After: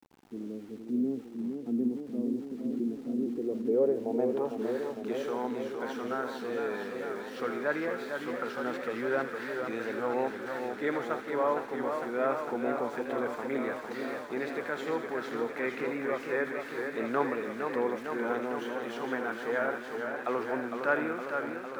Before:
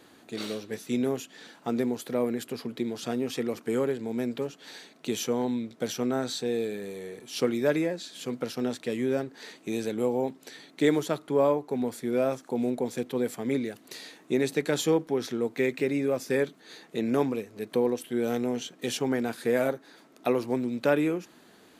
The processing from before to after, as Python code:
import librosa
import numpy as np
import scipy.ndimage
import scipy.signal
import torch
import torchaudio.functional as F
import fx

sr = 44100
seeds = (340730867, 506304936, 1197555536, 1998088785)

y = fx.transient(x, sr, attack_db=-3, sustain_db=2)
y = fx.riaa(y, sr, side='recording')
y = fx.rider(y, sr, range_db=4, speed_s=0.5)
y = fx.filter_sweep_lowpass(y, sr, from_hz=270.0, to_hz=1400.0, start_s=3.11, end_s=4.92, q=2.7)
y = np.where(np.abs(y) >= 10.0 ** (-50.0 / 20.0), y, 0.0)
y = fx.echo_wet_highpass(y, sr, ms=81, feedback_pct=64, hz=1700.0, wet_db=-8.0)
y = fx.echo_warbled(y, sr, ms=457, feedback_pct=76, rate_hz=2.8, cents=113, wet_db=-6)
y = F.gain(torch.from_numpy(y), -3.0).numpy()